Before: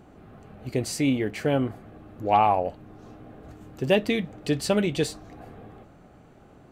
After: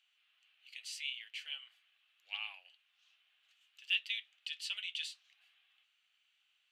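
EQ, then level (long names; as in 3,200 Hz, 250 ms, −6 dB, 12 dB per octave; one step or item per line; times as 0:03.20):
four-pole ladder high-pass 2,700 Hz, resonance 65%
high-shelf EQ 4,000 Hz −8.5 dB
high-shelf EQ 9,500 Hz −5 dB
+3.5 dB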